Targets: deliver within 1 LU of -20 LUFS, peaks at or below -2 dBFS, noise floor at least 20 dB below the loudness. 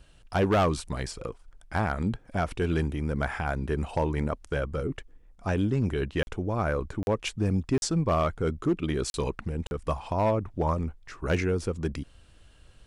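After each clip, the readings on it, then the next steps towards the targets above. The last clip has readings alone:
clipped samples 0.7%; clipping level -18.0 dBFS; dropouts 5; longest dropout 41 ms; loudness -29.0 LUFS; peak level -18.0 dBFS; loudness target -20.0 LUFS
-> clip repair -18 dBFS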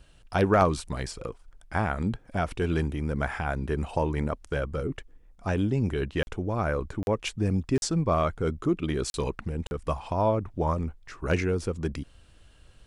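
clipped samples 0.0%; dropouts 5; longest dropout 41 ms
-> interpolate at 6.23/7.03/7.78/9.10/9.67 s, 41 ms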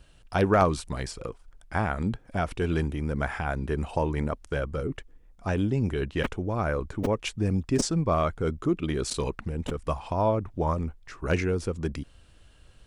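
dropouts 0; loudness -28.5 LUFS; peak level -9.0 dBFS; loudness target -20.0 LUFS
-> trim +8.5 dB; peak limiter -2 dBFS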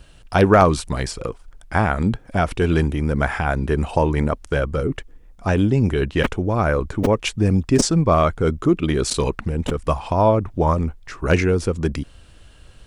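loudness -20.0 LUFS; peak level -2.0 dBFS; noise floor -47 dBFS

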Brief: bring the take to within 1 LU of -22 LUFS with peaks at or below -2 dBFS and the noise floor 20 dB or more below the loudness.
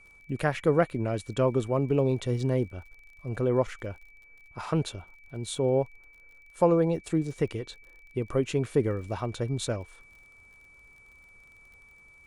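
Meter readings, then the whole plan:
tick rate 37 per s; steady tone 2.3 kHz; tone level -53 dBFS; loudness -28.5 LUFS; peak level -9.5 dBFS; loudness target -22.0 LUFS
-> de-click; band-stop 2.3 kHz, Q 30; trim +6.5 dB

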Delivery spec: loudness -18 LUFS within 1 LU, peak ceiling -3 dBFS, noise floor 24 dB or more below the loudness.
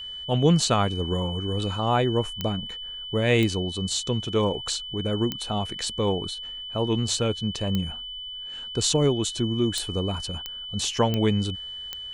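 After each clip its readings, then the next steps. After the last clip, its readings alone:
clicks found 8; steady tone 3 kHz; tone level -34 dBFS; loudness -26.0 LUFS; peak level -8.0 dBFS; loudness target -18.0 LUFS
-> de-click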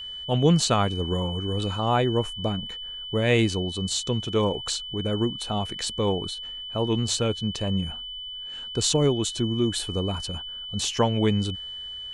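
clicks found 0; steady tone 3 kHz; tone level -34 dBFS
-> band-stop 3 kHz, Q 30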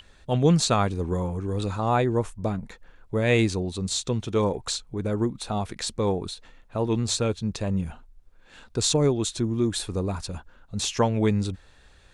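steady tone not found; loudness -26.0 LUFS; peak level -7.5 dBFS; loudness target -18.0 LUFS
-> trim +8 dB; peak limiter -3 dBFS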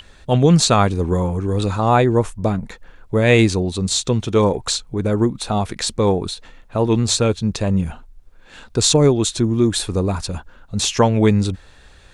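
loudness -18.0 LUFS; peak level -3.0 dBFS; noise floor -47 dBFS

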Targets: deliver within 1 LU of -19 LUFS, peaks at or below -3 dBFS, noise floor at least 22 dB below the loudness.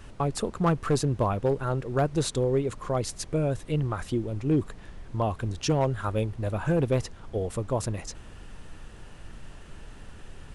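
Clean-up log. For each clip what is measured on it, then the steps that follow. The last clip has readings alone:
clipped samples 0.5%; clipping level -17.0 dBFS; noise floor -46 dBFS; noise floor target -50 dBFS; loudness -28.0 LUFS; peak level -17.0 dBFS; loudness target -19.0 LUFS
-> clip repair -17 dBFS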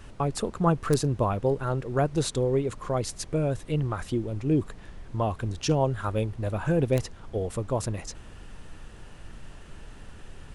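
clipped samples 0.0%; noise floor -46 dBFS; noise floor target -50 dBFS
-> noise print and reduce 6 dB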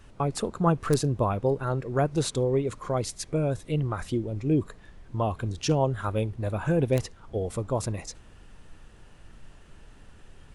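noise floor -52 dBFS; loudness -28.0 LUFS; peak level -8.0 dBFS; loudness target -19.0 LUFS
-> trim +9 dB; peak limiter -3 dBFS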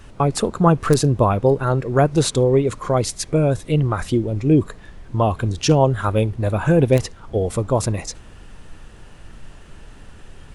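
loudness -19.0 LUFS; peak level -3.0 dBFS; noise floor -43 dBFS

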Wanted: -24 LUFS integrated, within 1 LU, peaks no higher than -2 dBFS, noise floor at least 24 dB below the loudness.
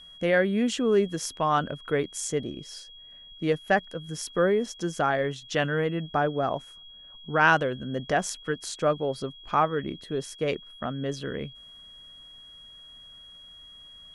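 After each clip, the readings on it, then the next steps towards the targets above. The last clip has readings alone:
steady tone 3.3 kHz; tone level -46 dBFS; loudness -27.5 LUFS; peak level -7.5 dBFS; loudness target -24.0 LUFS
-> band-stop 3.3 kHz, Q 30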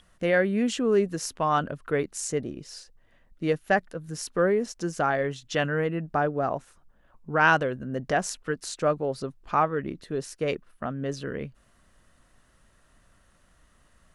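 steady tone not found; loudness -27.5 LUFS; peak level -7.0 dBFS; loudness target -24.0 LUFS
-> trim +3.5 dB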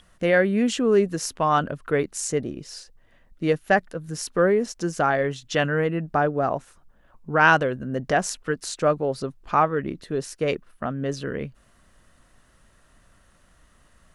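loudness -24.0 LUFS; peak level -3.5 dBFS; noise floor -59 dBFS

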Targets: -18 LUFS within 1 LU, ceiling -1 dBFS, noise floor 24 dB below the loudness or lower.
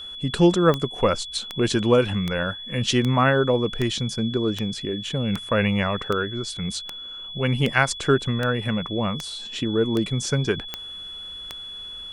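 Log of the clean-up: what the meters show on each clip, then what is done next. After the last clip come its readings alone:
clicks found 15; steady tone 3.4 kHz; tone level -34 dBFS; loudness -23.5 LUFS; peak level -4.0 dBFS; loudness target -18.0 LUFS
-> de-click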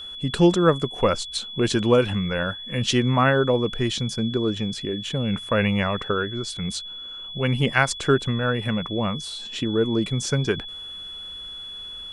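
clicks found 0; steady tone 3.4 kHz; tone level -34 dBFS
-> band-stop 3.4 kHz, Q 30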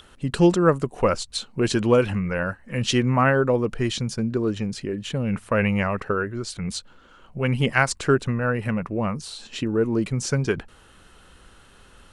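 steady tone not found; loudness -23.5 LUFS; peak level -4.0 dBFS; loudness target -18.0 LUFS
-> trim +5.5 dB; peak limiter -1 dBFS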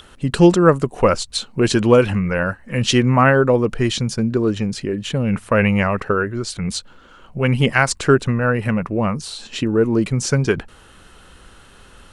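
loudness -18.0 LUFS; peak level -1.0 dBFS; noise floor -47 dBFS

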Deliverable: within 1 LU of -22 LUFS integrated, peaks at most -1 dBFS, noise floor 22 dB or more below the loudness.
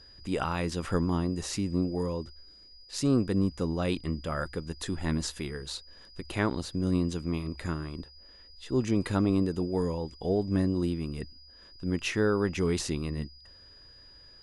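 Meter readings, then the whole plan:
steady tone 4.9 kHz; tone level -52 dBFS; loudness -30.5 LUFS; peak level -14.0 dBFS; loudness target -22.0 LUFS
-> band-stop 4.9 kHz, Q 30; trim +8.5 dB

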